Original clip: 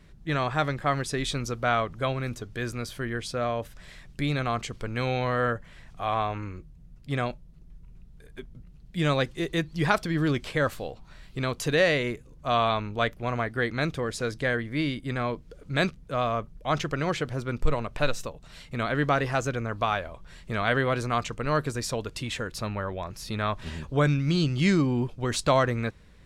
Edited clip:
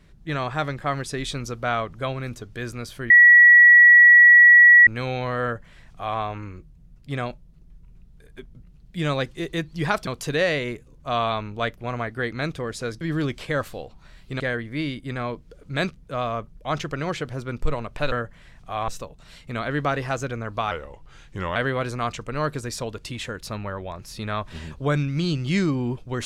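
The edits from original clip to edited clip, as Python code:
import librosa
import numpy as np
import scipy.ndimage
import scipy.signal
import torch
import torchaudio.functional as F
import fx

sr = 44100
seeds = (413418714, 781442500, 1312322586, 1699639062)

y = fx.edit(x, sr, fx.bleep(start_s=3.1, length_s=1.77, hz=1930.0, db=-7.5),
    fx.duplicate(start_s=5.43, length_s=0.76, to_s=18.12),
    fx.move(start_s=10.07, length_s=1.39, to_s=14.4),
    fx.speed_span(start_s=19.95, length_s=0.72, speed=0.85), tone=tone)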